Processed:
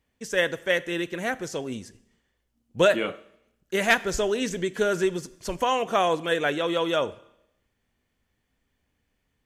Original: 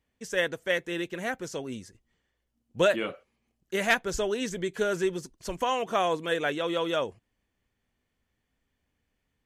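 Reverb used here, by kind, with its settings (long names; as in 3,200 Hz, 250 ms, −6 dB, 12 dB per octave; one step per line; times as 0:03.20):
four-comb reverb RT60 0.79 s, combs from 27 ms, DRR 17.5 dB
level +3.5 dB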